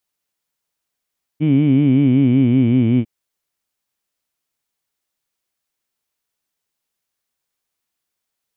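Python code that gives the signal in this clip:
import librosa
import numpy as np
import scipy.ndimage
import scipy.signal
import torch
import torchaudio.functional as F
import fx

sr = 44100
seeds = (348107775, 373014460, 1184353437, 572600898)

y = fx.vowel(sr, seeds[0], length_s=1.65, word='heed', hz=147.0, glide_st=-4.0, vibrato_hz=5.3, vibrato_st=1.25)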